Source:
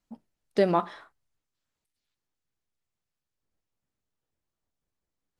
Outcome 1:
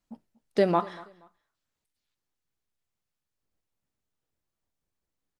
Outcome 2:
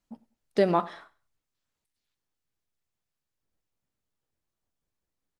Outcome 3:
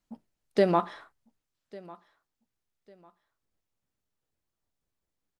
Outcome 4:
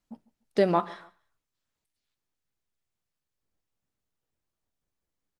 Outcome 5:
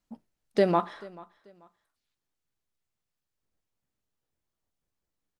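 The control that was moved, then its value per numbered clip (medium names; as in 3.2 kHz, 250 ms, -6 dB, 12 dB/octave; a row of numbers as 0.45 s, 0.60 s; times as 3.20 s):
feedback delay, time: 238 ms, 97 ms, 1149 ms, 147 ms, 437 ms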